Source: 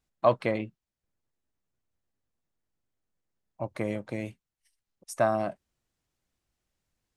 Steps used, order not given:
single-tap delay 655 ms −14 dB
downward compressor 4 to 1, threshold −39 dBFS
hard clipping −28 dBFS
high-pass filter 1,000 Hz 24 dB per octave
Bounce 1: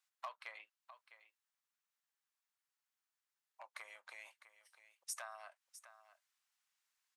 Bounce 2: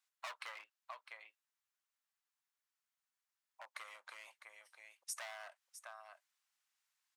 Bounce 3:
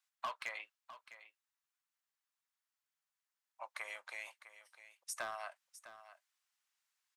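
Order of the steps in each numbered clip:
downward compressor, then single-tap delay, then hard clipping, then high-pass filter
single-tap delay, then hard clipping, then downward compressor, then high-pass filter
high-pass filter, then hard clipping, then downward compressor, then single-tap delay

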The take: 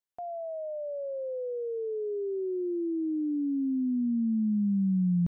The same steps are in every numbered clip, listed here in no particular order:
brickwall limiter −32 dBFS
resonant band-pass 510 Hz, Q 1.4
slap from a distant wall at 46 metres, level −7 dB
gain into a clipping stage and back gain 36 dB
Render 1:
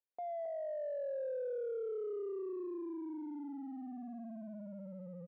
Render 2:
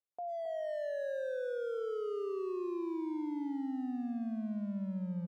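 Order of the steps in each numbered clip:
slap from a distant wall, then brickwall limiter, then gain into a clipping stage and back, then resonant band-pass
resonant band-pass, then brickwall limiter, then gain into a clipping stage and back, then slap from a distant wall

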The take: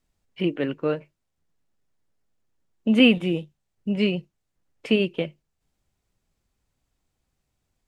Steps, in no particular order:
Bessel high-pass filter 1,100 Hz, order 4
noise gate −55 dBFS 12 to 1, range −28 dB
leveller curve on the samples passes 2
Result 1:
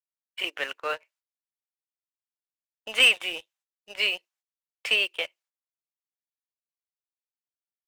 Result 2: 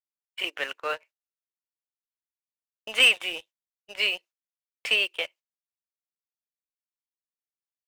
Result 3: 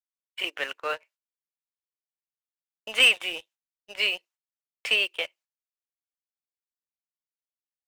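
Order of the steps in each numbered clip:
noise gate, then Bessel high-pass filter, then leveller curve on the samples
Bessel high-pass filter, then noise gate, then leveller curve on the samples
Bessel high-pass filter, then leveller curve on the samples, then noise gate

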